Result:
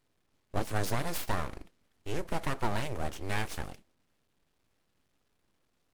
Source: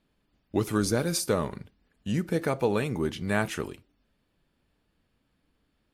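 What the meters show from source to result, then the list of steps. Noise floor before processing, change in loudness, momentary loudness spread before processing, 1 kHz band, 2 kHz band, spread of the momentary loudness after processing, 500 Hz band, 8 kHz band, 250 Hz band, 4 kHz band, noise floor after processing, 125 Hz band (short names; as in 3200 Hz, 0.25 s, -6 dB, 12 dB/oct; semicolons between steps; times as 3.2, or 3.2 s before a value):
-74 dBFS, -7.0 dB, 10 LU, -1.0 dB, -4.5 dB, 9 LU, -9.5 dB, -8.5 dB, -11.0 dB, -5.0 dB, -76 dBFS, -5.5 dB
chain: CVSD 64 kbps; full-wave rectifier; gain -2.5 dB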